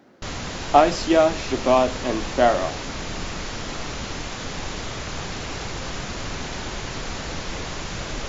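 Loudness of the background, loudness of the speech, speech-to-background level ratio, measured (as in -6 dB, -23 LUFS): -31.0 LUFS, -20.5 LUFS, 10.5 dB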